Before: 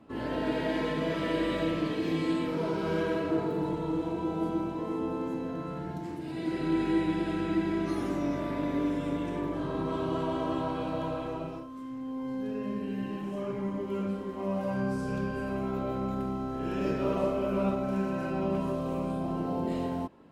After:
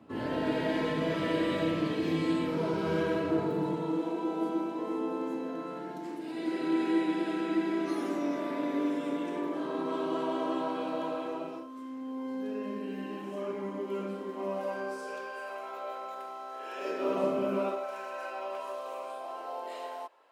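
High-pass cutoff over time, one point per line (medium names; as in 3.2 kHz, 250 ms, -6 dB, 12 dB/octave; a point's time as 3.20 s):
high-pass 24 dB/octave
3.32 s 73 Hz
4.15 s 240 Hz
14.42 s 240 Hz
15.41 s 570 Hz
16.73 s 570 Hz
17.42 s 140 Hz
17.88 s 580 Hz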